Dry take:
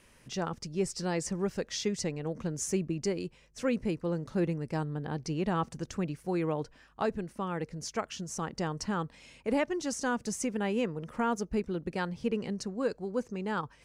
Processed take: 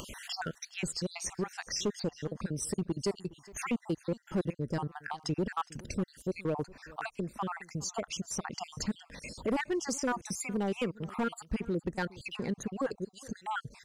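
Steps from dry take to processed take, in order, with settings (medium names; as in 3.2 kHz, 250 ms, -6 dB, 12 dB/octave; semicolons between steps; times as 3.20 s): random holes in the spectrogram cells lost 55%; in parallel at +2.5 dB: compression 12:1, threshold -44 dBFS, peak gain reduction 19.5 dB; on the sum: overload inside the chain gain 25 dB; upward compressor, threshold -34 dBFS; delay 413 ms -21.5 dB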